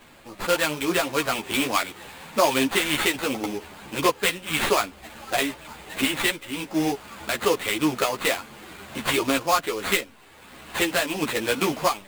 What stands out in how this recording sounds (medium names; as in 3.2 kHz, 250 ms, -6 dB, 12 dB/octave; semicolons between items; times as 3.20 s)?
aliases and images of a low sample rate 5.7 kHz, jitter 20%; a shimmering, thickened sound